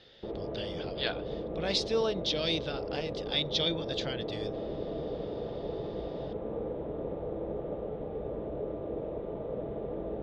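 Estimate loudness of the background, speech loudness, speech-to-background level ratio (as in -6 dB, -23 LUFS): -37.5 LUFS, -33.0 LUFS, 4.5 dB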